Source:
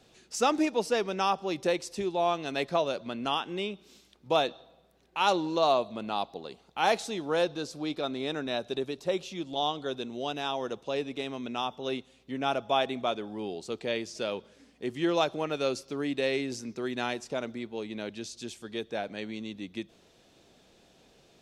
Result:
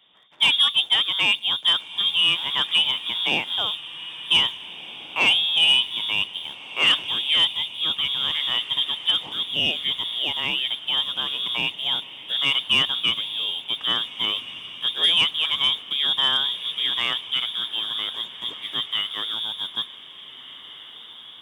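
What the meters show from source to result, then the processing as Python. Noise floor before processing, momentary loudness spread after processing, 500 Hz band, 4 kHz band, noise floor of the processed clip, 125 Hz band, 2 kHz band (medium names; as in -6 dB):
-62 dBFS, 13 LU, -12.5 dB, +20.0 dB, -43 dBFS, -1.5 dB, +12.0 dB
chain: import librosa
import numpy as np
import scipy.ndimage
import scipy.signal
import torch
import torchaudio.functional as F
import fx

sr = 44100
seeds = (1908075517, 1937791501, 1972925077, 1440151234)

y = fx.octave_divider(x, sr, octaves=2, level_db=-2.0)
y = fx.freq_invert(y, sr, carrier_hz=3600)
y = fx.leveller(y, sr, passes=1)
y = scipy.signal.sosfilt(scipy.signal.bessel(2, 190.0, 'highpass', norm='mag', fs=sr, output='sos'), y)
y = fx.echo_diffused(y, sr, ms=1688, feedback_pct=48, wet_db=-15)
y = F.gain(torch.from_numpy(y), 3.5).numpy()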